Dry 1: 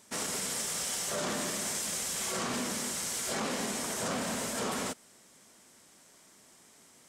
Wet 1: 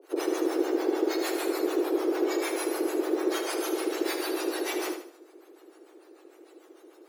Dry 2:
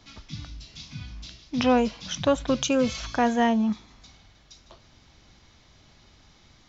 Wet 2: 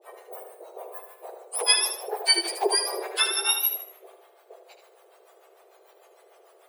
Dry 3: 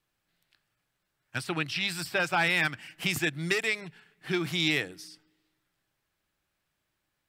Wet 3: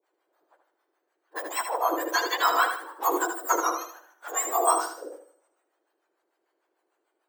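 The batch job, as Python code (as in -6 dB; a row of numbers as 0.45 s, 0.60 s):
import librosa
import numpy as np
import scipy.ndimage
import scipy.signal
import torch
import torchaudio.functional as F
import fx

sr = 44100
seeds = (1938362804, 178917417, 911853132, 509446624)

p1 = fx.octave_mirror(x, sr, pivot_hz=1600.0)
p2 = scipy.signal.sosfilt(scipy.signal.ellip(4, 1.0, 40, 340.0, 'highpass', fs=sr, output='sos'), p1)
p3 = fx.harmonic_tremolo(p2, sr, hz=6.7, depth_pct=100, crossover_hz=600.0)
p4 = p3 + fx.echo_feedback(p3, sr, ms=77, feedback_pct=36, wet_db=-7.5, dry=0)
y = p4 * 10.0 ** (-30 / 20.0) / np.sqrt(np.mean(np.square(p4)))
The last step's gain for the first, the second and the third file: +8.5 dB, +7.0 dB, +10.0 dB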